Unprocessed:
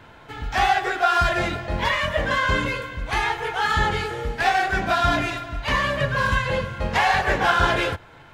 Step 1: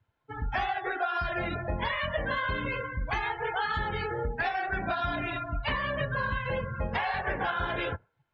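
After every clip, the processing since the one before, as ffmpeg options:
-af "afftdn=nr=33:nf=-30,acompressor=threshold=0.0447:ratio=10"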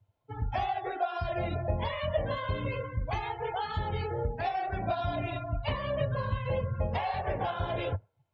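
-af "equalizer=f=100:t=o:w=0.67:g=11,equalizer=f=630:t=o:w=0.67:g=7,equalizer=f=1600:t=o:w=0.67:g=-10,volume=0.708"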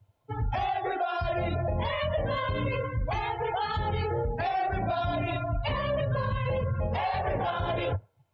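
-af "alimiter=level_in=1.41:limit=0.0631:level=0:latency=1:release=44,volume=0.708,volume=2"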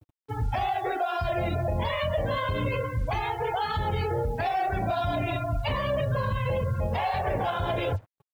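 -af "acrusher=bits=8:mix=0:aa=0.5,volume=1.19"

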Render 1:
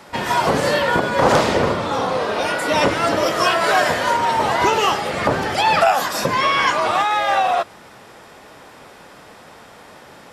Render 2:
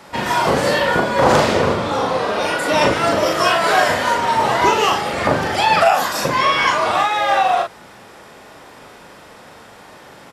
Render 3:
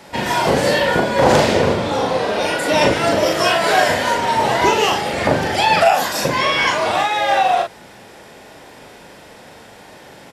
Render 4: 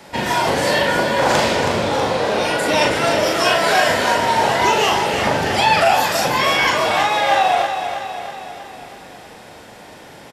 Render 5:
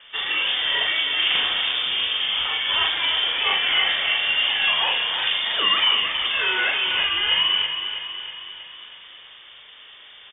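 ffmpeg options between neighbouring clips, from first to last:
-filter_complex "[0:a]asplit=2[s0][s1];[s1]adelay=40,volume=0.631[s2];[s0][s2]amix=inputs=2:normalize=0"
-af "equalizer=f=1200:t=o:w=0.46:g=-8,volume=1.19"
-filter_complex "[0:a]acrossover=split=730|980[s0][s1][s2];[s0]alimiter=limit=0.168:level=0:latency=1[s3];[s3][s1][s2]amix=inputs=3:normalize=0,aecho=1:1:322|644|966|1288|1610|1932|2254:0.398|0.227|0.129|0.0737|0.042|0.024|0.0137"
-af "lowpass=f=3100:t=q:w=0.5098,lowpass=f=3100:t=q:w=0.6013,lowpass=f=3100:t=q:w=0.9,lowpass=f=3100:t=q:w=2.563,afreqshift=-3700,volume=0.562"

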